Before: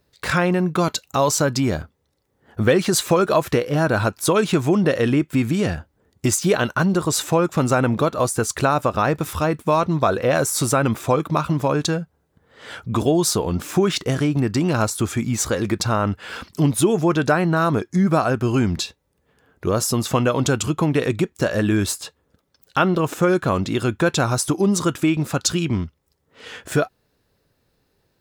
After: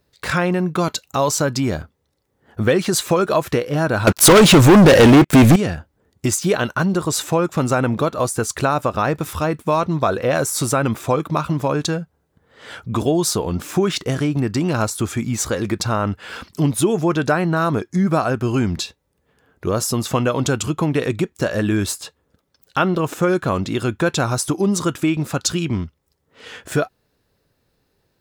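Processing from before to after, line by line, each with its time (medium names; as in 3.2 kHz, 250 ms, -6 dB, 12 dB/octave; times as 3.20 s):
4.07–5.56 s: waveshaping leveller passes 5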